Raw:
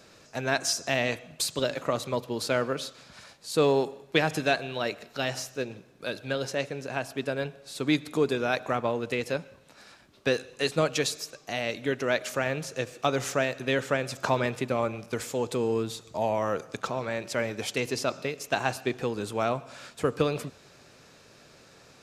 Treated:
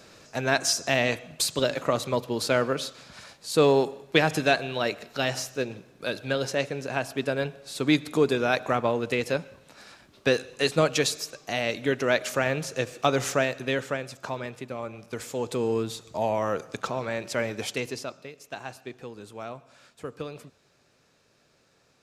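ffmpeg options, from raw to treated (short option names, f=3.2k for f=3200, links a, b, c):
-af "volume=11.5dB,afade=t=out:st=13.29:d=0.9:silence=0.298538,afade=t=in:st=14.82:d=0.86:silence=0.375837,afade=t=out:st=17.62:d=0.54:silence=0.266073"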